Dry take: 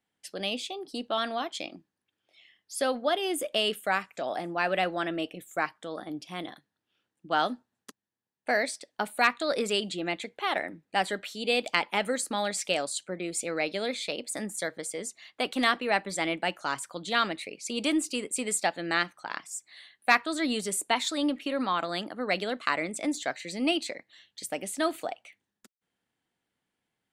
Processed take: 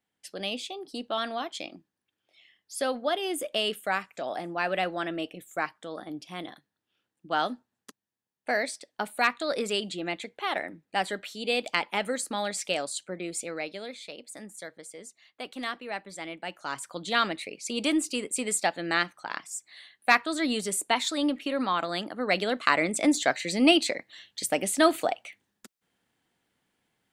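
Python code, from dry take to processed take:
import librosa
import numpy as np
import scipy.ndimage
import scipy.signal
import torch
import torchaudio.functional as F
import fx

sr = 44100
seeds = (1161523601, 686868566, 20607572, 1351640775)

y = fx.gain(x, sr, db=fx.line((13.31, -1.0), (13.93, -9.0), (16.37, -9.0), (16.94, 1.0), (22.04, 1.0), (23.07, 7.0)))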